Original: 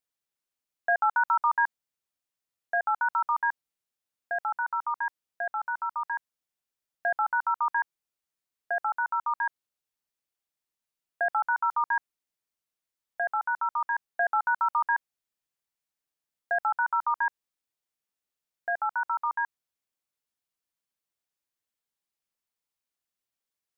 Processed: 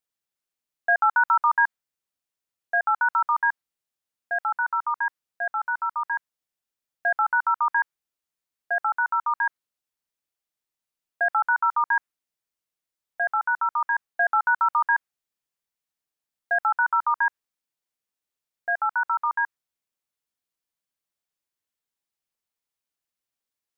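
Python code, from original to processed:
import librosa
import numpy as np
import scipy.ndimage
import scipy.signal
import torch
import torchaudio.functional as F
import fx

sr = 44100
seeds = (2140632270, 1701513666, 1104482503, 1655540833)

y = fx.dynamic_eq(x, sr, hz=1500.0, q=1.1, threshold_db=-38.0, ratio=4.0, max_db=6)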